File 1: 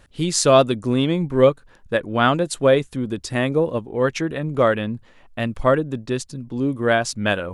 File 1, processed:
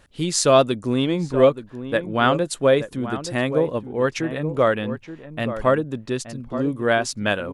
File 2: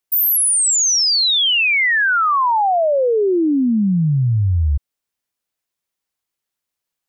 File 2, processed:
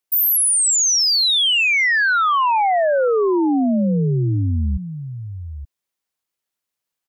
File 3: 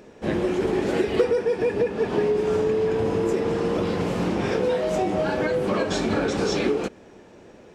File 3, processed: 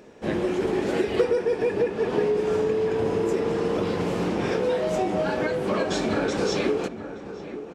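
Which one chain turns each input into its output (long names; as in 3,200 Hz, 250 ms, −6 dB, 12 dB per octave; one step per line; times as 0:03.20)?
low-shelf EQ 110 Hz −4.5 dB
slap from a distant wall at 150 metres, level −11 dB
level −1 dB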